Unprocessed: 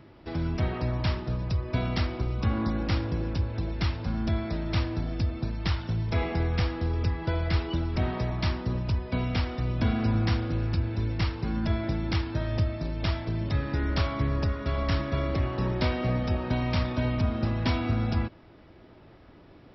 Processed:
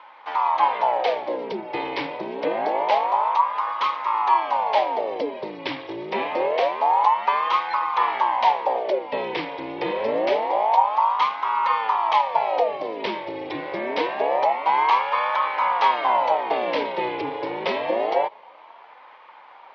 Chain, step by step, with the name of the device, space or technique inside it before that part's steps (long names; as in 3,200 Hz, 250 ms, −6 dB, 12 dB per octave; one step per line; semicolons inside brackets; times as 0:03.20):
voice changer toy (ring modulator whose carrier an LFO sweeps 690 Hz, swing 70%, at 0.26 Hz; loudspeaker in its box 420–4,300 Hz, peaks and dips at 560 Hz +5 dB, 920 Hz +10 dB, 1,400 Hz −7 dB, 2,200 Hz +8 dB, 3,200 Hz +4 dB)
level +5 dB